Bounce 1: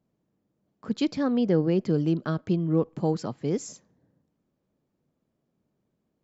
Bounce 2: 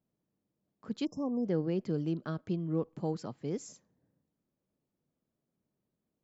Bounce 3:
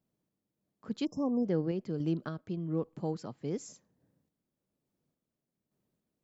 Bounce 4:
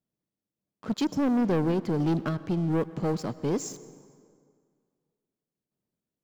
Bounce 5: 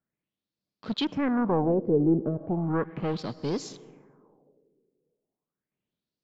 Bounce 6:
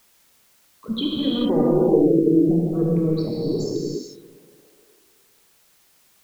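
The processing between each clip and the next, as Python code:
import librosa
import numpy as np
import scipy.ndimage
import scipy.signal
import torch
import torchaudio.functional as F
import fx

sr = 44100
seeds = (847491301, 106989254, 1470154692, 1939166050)

y1 = fx.spec_erase(x, sr, start_s=1.05, length_s=0.41, low_hz=1200.0, high_hz=5100.0)
y1 = y1 * 10.0 ** (-8.5 / 20.0)
y2 = fx.tremolo_random(y1, sr, seeds[0], hz=3.5, depth_pct=55)
y2 = y2 * 10.0 ** (3.0 / 20.0)
y3 = fx.leveller(y2, sr, passes=3)
y3 = fx.rev_plate(y3, sr, seeds[1], rt60_s=2.1, hf_ratio=0.7, predelay_ms=90, drr_db=16.5)
y4 = fx.filter_lfo_lowpass(y3, sr, shape='sine', hz=0.36, low_hz=420.0, high_hz=4700.0, q=3.8)
y4 = y4 * 10.0 ** (-2.0 / 20.0)
y5 = fx.envelope_sharpen(y4, sr, power=3.0)
y5 = fx.rev_gated(y5, sr, seeds[2], gate_ms=470, shape='flat', drr_db=-5.0)
y5 = fx.quant_dither(y5, sr, seeds[3], bits=10, dither='triangular')
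y5 = y5 * 10.0 ** (1.5 / 20.0)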